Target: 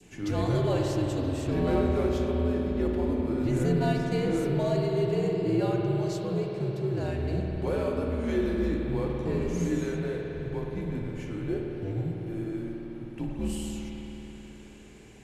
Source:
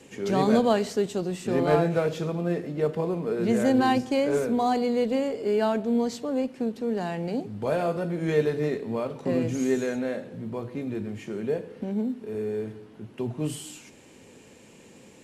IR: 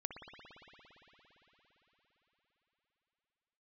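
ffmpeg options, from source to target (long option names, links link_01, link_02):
-filter_complex "[0:a]adynamicequalizer=threshold=0.00708:dfrequency=1500:dqfactor=0.97:tfrequency=1500:tqfactor=0.97:attack=5:release=100:ratio=0.375:range=2.5:mode=cutabove:tftype=bell,asplit=2[link_01][link_02];[link_02]alimiter=limit=-19dB:level=0:latency=1,volume=1dB[link_03];[link_01][link_03]amix=inputs=2:normalize=0,afreqshift=-92[link_04];[1:a]atrim=start_sample=2205,asetrate=48510,aresample=44100[link_05];[link_04][link_05]afir=irnorm=-1:irlink=0,volume=-5dB"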